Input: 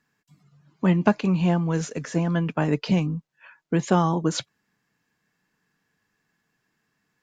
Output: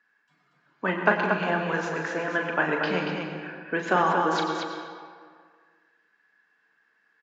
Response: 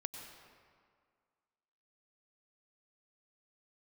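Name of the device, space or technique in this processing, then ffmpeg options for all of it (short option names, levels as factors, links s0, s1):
station announcement: -filter_complex "[0:a]highpass=420,lowpass=3700,equalizer=f=1600:t=o:w=0.49:g=10,aecho=1:1:37.9|233.2:0.447|0.562[s0];[1:a]atrim=start_sample=2205[s1];[s0][s1]afir=irnorm=-1:irlink=0,volume=1.33"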